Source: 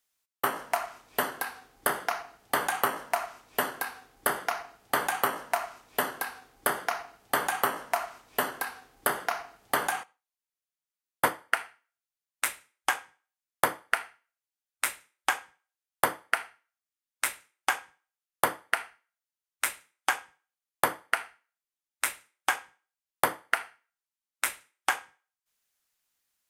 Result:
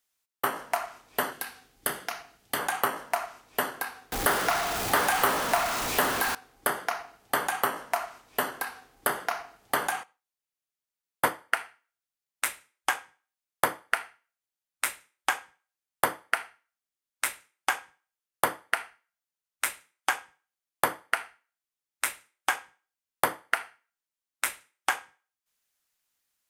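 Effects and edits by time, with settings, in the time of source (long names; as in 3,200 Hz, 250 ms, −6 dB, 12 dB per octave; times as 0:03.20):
0:01.33–0:02.59: drawn EQ curve 190 Hz 0 dB, 1,000 Hz −8 dB, 3,000 Hz +1 dB
0:04.12–0:06.35: converter with a step at zero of −24.5 dBFS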